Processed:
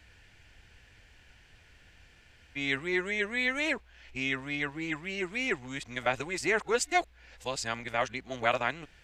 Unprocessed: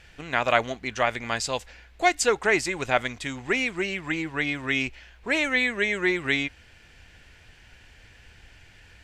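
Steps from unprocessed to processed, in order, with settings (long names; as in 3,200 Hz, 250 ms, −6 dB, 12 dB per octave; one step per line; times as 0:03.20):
played backwards from end to start
level −6 dB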